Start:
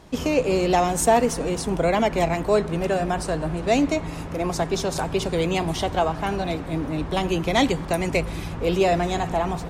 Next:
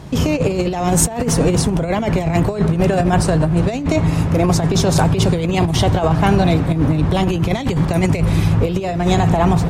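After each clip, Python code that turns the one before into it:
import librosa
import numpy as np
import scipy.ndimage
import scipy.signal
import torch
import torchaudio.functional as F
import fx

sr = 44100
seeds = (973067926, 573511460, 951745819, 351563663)

y = fx.peak_eq(x, sr, hz=120.0, db=13.5, octaves=1.2)
y = fx.over_compress(y, sr, threshold_db=-21.0, ratio=-0.5)
y = F.gain(torch.from_numpy(y), 6.5).numpy()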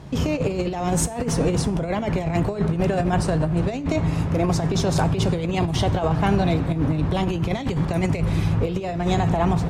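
y = fx.high_shelf(x, sr, hz=8800.0, db=-8.0)
y = fx.comb_fb(y, sr, f0_hz=68.0, decay_s=0.45, harmonics='all', damping=0.0, mix_pct=40)
y = F.gain(torch.from_numpy(y), -2.5).numpy()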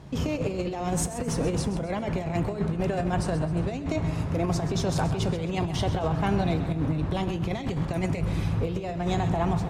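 y = fx.echo_feedback(x, sr, ms=131, feedback_pct=41, wet_db=-12.5)
y = F.gain(torch.from_numpy(y), -5.5).numpy()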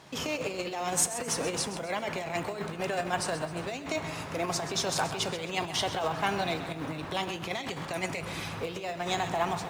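y = fx.highpass(x, sr, hz=1300.0, slope=6)
y = fx.quant_float(y, sr, bits=4)
y = F.gain(torch.from_numpy(y), 5.5).numpy()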